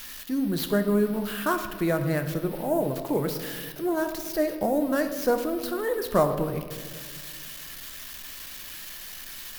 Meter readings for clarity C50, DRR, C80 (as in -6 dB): 9.0 dB, 6.5 dB, 10.5 dB